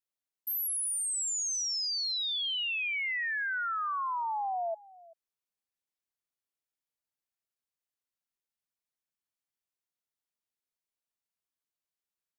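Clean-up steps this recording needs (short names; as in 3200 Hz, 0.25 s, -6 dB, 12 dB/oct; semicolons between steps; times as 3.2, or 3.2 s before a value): inverse comb 0.387 s -21.5 dB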